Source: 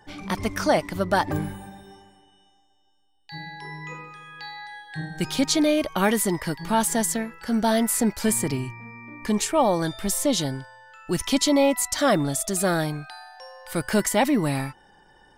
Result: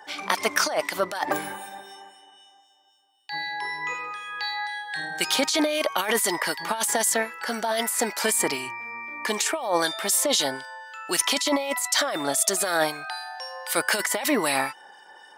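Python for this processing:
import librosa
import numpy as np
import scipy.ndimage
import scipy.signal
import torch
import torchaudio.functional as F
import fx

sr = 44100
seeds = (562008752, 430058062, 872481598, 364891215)

y = scipy.signal.sosfilt(scipy.signal.butter(2, 620.0, 'highpass', fs=sr, output='sos'), x)
y = fx.over_compress(y, sr, threshold_db=-29.0, ratio=-1.0)
y = fx.harmonic_tremolo(y, sr, hz=3.9, depth_pct=50, crossover_hz=2000.0)
y = y * 10.0 ** (8.0 / 20.0)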